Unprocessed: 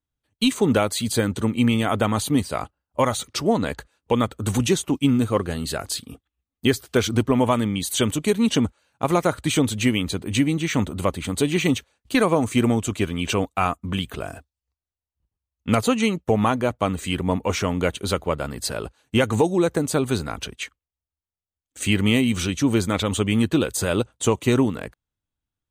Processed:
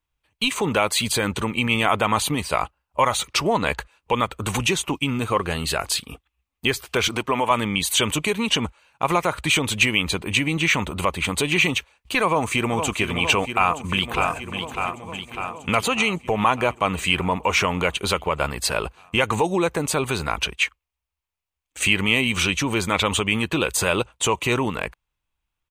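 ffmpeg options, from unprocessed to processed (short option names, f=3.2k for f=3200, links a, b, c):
-filter_complex "[0:a]asettb=1/sr,asplit=3[a][b][c];[a]atrim=end=7.084[d];[b]atrim=start=7.08:end=7.51,asetpts=PTS-STARTPTS,afade=t=in:d=0.004:c=qsin,afade=t=out:st=0.426:d=0.004:c=qsin,highpass=f=280:p=1[e];[c]atrim=start=7.506[f];[d][e]acrossfade=d=0.004:c1=hsin:c2=qsin[g];[g][f]acrossfade=d=0.004:c1=qsin:c2=hsin,asplit=2[h][i];[i]afade=t=in:st=12.26:d=0.01,afade=t=out:st=12.89:d=0.01,aecho=0:1:460|920|1380|1840|2300|2760|3220|3680|4140|4600|5060|5520:0.281838|0.211379|0.158534|0.118901|0.0891754|0.0668815|0.0501612|0.0376209|0.0282157|0.0211617|0.0158713|0.0119035[j];[h][j]amix=inputs=2:normalize=0,asplit=2[k][l];[l]afade=t=in:st=13.55:d=0.01,afade=t=out:st=14.29:d=0.01,aecho=0:1:600|1200|1800|2400|3000|3600|4200|4800|5400:0.354813|0.230629|0.149909|0.0974406|0.0633364|0.0411687|0.0267596|0.0173938|0.0113059[m];[k][m]amix=inputs=2:normalize=0,lowshelf=f=78:g=7,alimiter=limit=-14.5dB:level=0:latency=1:release=97,equalizer=f=100:t=o:w=0.67:g=-8,equalizer=f=250:t=o:w=0.67:g=-7,equalizer=f=1k:t=o:w=0.67:g=8,equalizer=f=2.5k:t=o:w=0.67:g=10,volume=3dB"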